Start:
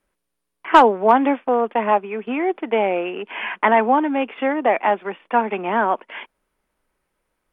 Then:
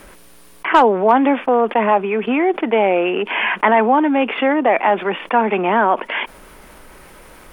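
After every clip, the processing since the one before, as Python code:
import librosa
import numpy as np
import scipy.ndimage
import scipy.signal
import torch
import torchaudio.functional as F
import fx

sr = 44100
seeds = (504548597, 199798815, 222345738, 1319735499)

y = fx.env_flatten(x, sr, amount_pct=50)
y = y * 10.0 ** (-1.5 / 20.0)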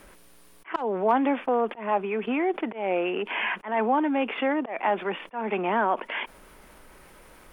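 y = fx.auto_swell(x, sr, attack_ms=197.0)
y = y * 10.0 ** (-9.0 / 20.0)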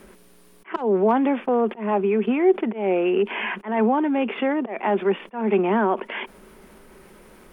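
y = fx.small_body(x, sr, hz=(210.0, 380.0), ring_ms=45, db=11)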